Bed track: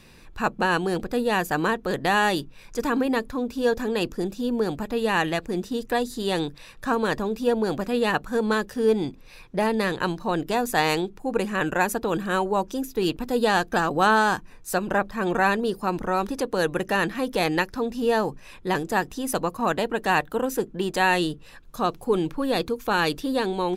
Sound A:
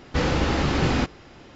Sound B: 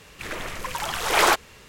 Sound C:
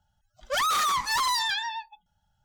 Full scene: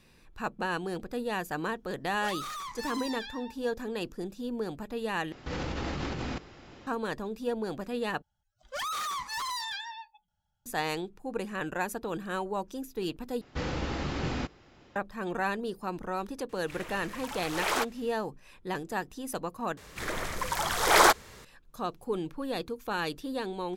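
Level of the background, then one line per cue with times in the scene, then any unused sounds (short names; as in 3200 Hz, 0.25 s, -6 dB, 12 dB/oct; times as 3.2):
bed track -9.5 dB
1.71 add C -14 dB + mismatched tape noise reduction encoder only
5.32 replace with A -8 dB + negative-ratio compressor -26 dBFS
8.22 replace with C -9 dB
13.41 replace with A -10.5 dB
16.49 add B -11 dB
19.77 replace with B -0.5 dB + bell 2700 Hz -7.5 dB 0.42 oct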